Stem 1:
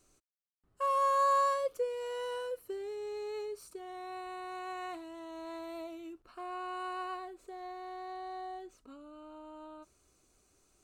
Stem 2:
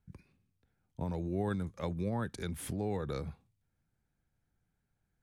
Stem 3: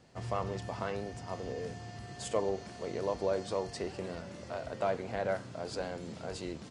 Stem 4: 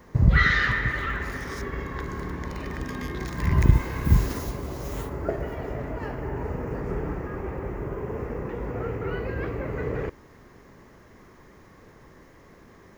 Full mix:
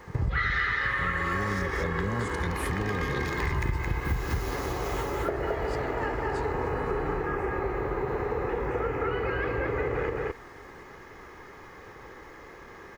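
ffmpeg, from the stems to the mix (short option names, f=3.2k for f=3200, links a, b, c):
-filter_complex "[0:a]volume=-2.5dB[a];[1:a]lowshelf=f=150:g=10.5,volume=2.5dB[b];[2:a]highpass=1.3k,volume=-3dB[c];[3:a]equalizer=f=1.5k:w=0.34:g=9.5,aecho=1:1:2.4:0.39,volume=-2.5dB,asplit=2[d][e];[e]volume=-3.5dB,aecho=0:1:219:1[f];[a][b][c][d][f]amix=inputs=5:normalize=0,acompressor=threshold=-25dB:ratio=6"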